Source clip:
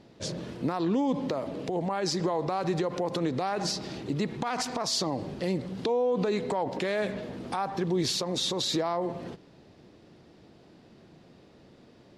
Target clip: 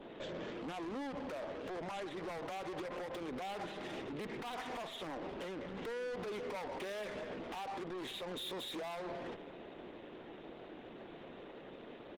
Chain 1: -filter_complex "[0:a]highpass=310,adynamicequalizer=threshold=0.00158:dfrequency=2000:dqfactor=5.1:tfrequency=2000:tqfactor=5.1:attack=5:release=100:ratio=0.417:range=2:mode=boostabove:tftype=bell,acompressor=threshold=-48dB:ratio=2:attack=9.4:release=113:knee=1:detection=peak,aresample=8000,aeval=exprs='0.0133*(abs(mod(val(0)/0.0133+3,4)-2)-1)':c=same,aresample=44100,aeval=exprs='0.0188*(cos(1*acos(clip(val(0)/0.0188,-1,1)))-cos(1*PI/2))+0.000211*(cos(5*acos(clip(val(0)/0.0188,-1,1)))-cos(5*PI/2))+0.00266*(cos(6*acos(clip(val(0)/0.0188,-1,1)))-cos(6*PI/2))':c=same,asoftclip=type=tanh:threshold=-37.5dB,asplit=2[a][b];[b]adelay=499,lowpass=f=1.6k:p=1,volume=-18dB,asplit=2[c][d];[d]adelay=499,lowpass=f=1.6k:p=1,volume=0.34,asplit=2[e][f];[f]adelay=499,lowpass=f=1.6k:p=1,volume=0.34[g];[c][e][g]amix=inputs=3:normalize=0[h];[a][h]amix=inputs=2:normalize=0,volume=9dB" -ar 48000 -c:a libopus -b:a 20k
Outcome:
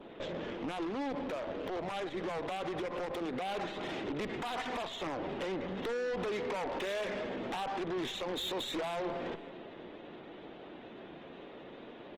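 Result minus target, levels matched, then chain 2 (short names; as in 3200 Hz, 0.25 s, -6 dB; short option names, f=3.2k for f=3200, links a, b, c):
soft clip: distortion -11 dB
-filter_complex "[0:a]highpass=310,adynamicequalizer=threshold=0.00158:dfrequency=2000:dqfactor=5.1:tfrequency=2000:tqfactor=5.1:attack=5:release=100:ratio=0.417:range=2:mode=boostabove:tftype=bell,acompressor=threshold=-48dB:ratio=2:attack=9.4:release=113:knee=1:detection=peak,aresample=8000,aeval=exprs='0.0133*(abs(mod(val(0)/0.0133+3,4)-2)-1)':c=same,aresample=44100,aeval=exprs='0.0188*(cos(1*acos(clip(val(0)/0.0188,-1,1)))-cos(1*PI/2))+0.000211*(cos(5*acos(clip(val(0)/0.0188,-1,1)))-cos(5*PI/2))+0.00266*(cos(6*acos(clip(val(0)/0.0188,-1,1)))-cos(6*PI/2))':c=same,asoftclip=type=tanh:threshold=-46.5dB,asplit=2[a][b];[b]adelay=499,lowpass=f=1.6k:p=1,volume=-18dB,asplit=2[c][d];[d]adelay=499,lowpass=f=1.6k:p=1,volume=0.34,asplit=2[e][f];[f]adelay=499,lowpass=f=1.6k:p=1,volume=0.34[g];[c][e][g]amix=inputs=3:normalize=0[h];[a][h]amix=inputs=2:normalize=0,volume=9dB" -ar 48000 -c:a libopus -b:a 20k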